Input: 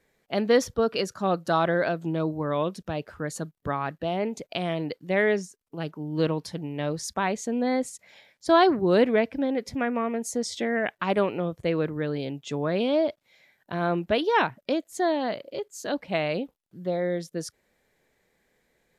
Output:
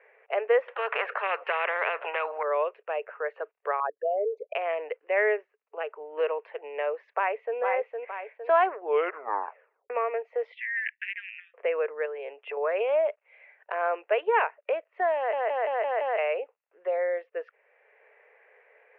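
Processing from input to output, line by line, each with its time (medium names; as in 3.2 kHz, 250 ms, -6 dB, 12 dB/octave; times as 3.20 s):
0.68–2.43 s: spectrum-flattening compressor 4:1
3.80–4.55 s: resonances exaggerated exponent 3
7.12–7.58 s: echo throw 460 ms, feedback 35%, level -5 dB
8.73 s: tape stop 1.17 s
10.52–11.54 s: steep high-pass 1.7 kHz 96 dB/octave
12.05–12.57 s: compression 5:1, threshold -31 dBFS
15.16 s: stutter in place 0.17 s, 6 plays
whole clip: Chebyshev band-pass 430–2700 Hz, order 5; three bands compressed up and down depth 40%; trim +1.5 dB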